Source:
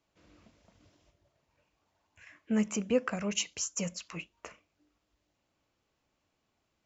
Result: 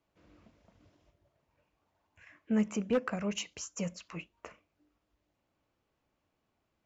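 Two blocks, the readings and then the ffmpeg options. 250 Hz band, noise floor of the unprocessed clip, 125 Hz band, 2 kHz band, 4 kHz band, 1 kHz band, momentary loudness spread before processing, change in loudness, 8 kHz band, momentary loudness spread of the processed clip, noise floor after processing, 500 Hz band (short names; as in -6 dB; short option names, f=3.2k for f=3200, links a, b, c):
-0.5 dB, -80 dBFS, 0.0 dB, -2.5 dB, -5.0 dB, -0.5 dB, 17 LU, -1.5 dB, n/a, 19 LU, -81 dBFS, -1.5 dB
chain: -af "aeval=exprs='0.1*(abs(mod(val(0)/0.1+3,4)-2)-1)':c=same,highshelf=f=3.3k:g=-10"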